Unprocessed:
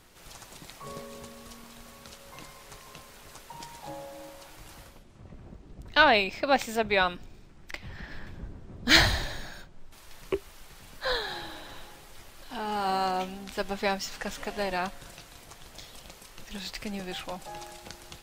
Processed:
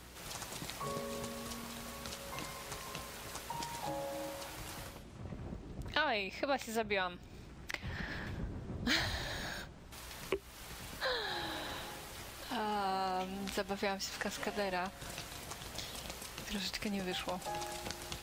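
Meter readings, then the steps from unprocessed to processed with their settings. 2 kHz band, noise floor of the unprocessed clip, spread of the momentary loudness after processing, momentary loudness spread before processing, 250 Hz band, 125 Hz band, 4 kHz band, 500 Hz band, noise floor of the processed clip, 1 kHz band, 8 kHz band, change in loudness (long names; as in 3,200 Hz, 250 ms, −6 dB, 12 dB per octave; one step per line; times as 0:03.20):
−10.0 dB, −52 dBFS, 11 LU, 24 LU, −5.5 dB, −4.5 dB, −8.5 dB, −7.5 dB, −52 dBFS, −8.0 dB, −3.5 dB, −12.0 dB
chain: high-pass filter 52 Hz
downward compressor 3 to 1, threshold −40 dBFS, peak gain reduction 19 dB
mains hum 60 Hz, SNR 19 dB
level +3.5 dB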